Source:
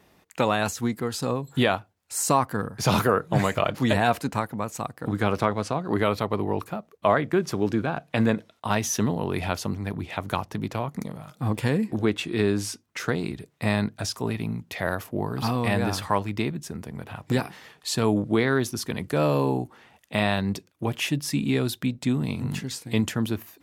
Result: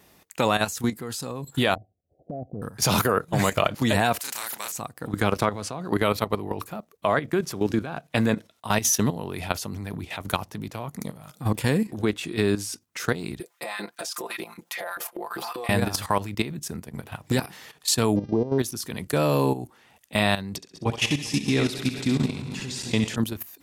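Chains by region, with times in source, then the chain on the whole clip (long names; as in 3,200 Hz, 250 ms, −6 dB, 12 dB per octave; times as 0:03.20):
0:01.75–0:02.62: Chebyshev low-pass filter 750 Hz, order 10 + low-shelf EQ 100 Hz +4 dB + downward compressor 5 to 1, threshold −31 dBFS
0:04.19–0:04.72: high-pass filter 1,100 Hz + double-tracking delay 34 ms −3.5 dB + every bin compressed towards the loudest bin 2 to 1
0:13.40–0:15.69: auto-filter high-pass saw up 5.1 Hz 310–1,700 Hz + comb filter 5.8 ms, depth 92% + downward compressor 8 to 1, threshold −29 dBFS
0:18.15–0:18.58: Chebyshev low-pass filter 940 Hz, order 5 + hum with harmonics 400 Hz, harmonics 15, −53 dBFS −6 dB per octave
0:20.56–0:23.16: feedback delay that plays each chunk backwards 102 ms, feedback 77%, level −10 dB + low-pass filter 6,400 Hz + feedback echo with a high-pass in the loop 64 ms, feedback 43%, high-pass 470 Hz, level −6 dB
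whole clip: high-shelf EQ 4,900 Hz +10.5 dB; output level in coarse steps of 12 dB; level +3 dB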